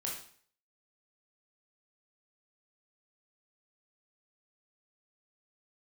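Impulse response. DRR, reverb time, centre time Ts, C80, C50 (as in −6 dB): −3.0 dB, 0.50 s, 37 ms, 8.5 dB, 4.0 dB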